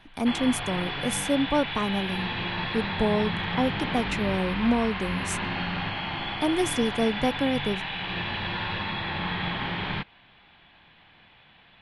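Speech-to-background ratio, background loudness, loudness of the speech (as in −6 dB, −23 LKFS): 2.0 dB, −30.0 LKFS, −28.0 LKFS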